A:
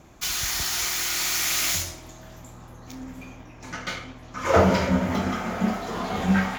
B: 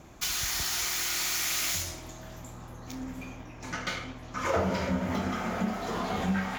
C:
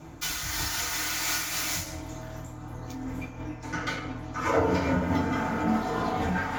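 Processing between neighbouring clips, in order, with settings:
compression 2.5:1, threshold -29 dBFS, peak gain reduction 11 dB
FDN reverb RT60 0.37 s, low-frequency decay 1.45×, high-frequency decay 0.35×, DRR -4.5 dB; random flutter of the level, depth 60%

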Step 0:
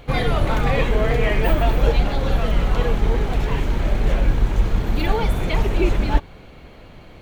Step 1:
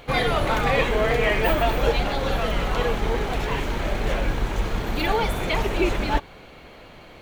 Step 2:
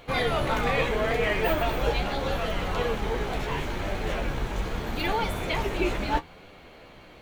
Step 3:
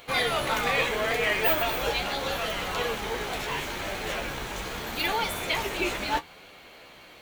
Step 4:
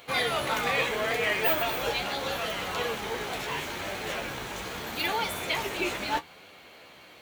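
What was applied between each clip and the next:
bass shelf 260 Hz -10.5 dB; trim +2.5 dB
flange 0.77 Hz, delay 9.8 ms, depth 7.2 ms, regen +42%
tilt EQ +2.5 dB/octave
high-pass 69 Hz; trim -1.5 dB

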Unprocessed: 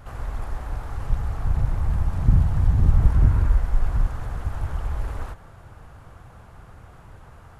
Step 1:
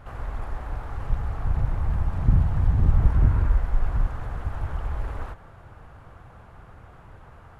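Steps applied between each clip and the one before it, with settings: tone controls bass -2 dB, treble -9 dB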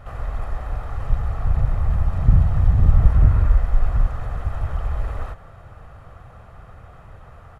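comb 1.6 ms, depth 37%; trim +2.5 dB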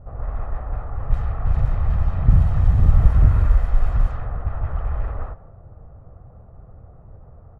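level-controlled noise filter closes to 490 Hz, open at -10.5 dBFS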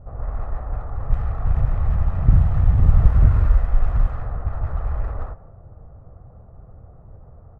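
local Wiener filter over 9 samples; loudspeaker Doppler distortion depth 0.37 ms

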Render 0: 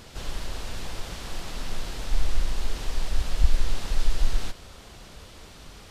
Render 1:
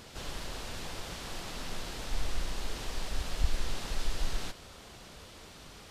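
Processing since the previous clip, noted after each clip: bass shelf 68 Hz -9 dB; trim -2.5 dB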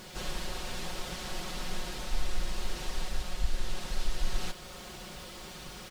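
bit crusher 10-bit; gain riding within 4 dB 0.5 s; comb 5.5 ms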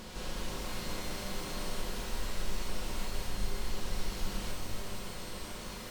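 spectral levelling over time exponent 0.6; small resonant body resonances 230/460/1000 Hz, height 7 dB, ringing for 35 ms; pitch-shifted reverb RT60 1.3 s, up +12 st, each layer -2 dB, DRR 3.5 dB; trim -8 dB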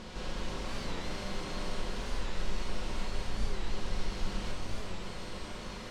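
distance through air 76 m; warped record 45 rpm, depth 160 cents; trim +1.5 dB

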